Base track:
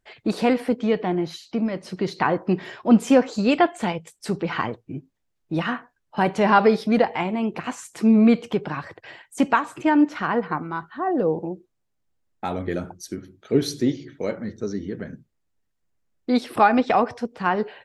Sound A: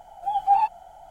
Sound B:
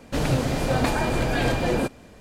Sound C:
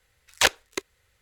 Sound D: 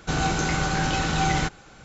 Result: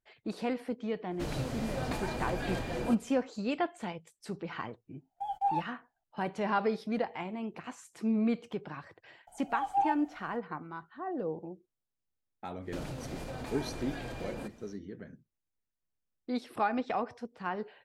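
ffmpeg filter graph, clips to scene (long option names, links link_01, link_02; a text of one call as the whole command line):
ffmpeg -i bed.wav -i cue0.wav -i cue1.wav -filter_complex "[2:a]asplit=2[link_01][link_02];[1:a]asplit=2[link_03][link_04];[0:a]volume=-13.5dB[link_05];[link_03]agate=range=-29dB:threshold=-35dB:ratio=16:release=100:detection=peak[link_06];[link_02]acompressor=threshold=-26dB:ratio=6:attack=3.2:release=140:knee=1:detection=peak[link_07];[link_01]atrim=end=2.2,asetpts=PTS-STARTPTS,volume=-12.5dB,afade=type=in:duration=0.1,afade=type=out:start_time=2.1:duration=0.1,adelay=1070[link_08];[link_06]atrim=end=1.1,asetpts=PTS-STARTPTS,volume=-11dB,afade=type=in:duration=0.004:curve=hsin,afade=type=out:start_time=1.096:duration=0.004:curve=hsin,adelay=4940[link_09];[link_04]atrim=end=1.1,asetpts=PTS-STARTPTS,volume=-9.5dB,afade=type=in:duration=0.004:curve=hsin,afade=type=out:start_time=1.096:duration=0.004:curve=hsin,adelay=9270[link_10];[link_07]atrim=end=2.2,asetpts=PTS-STARTPTS,volume=-10.5dB,afade=type=in:duration=0.1,afade=type=out:start_time=2.1:duration=0.1,adelay=12600[link_11];[link_05][link_08][link_09][link_10][link_11]amix=inputs=5:normalize=0" out.wav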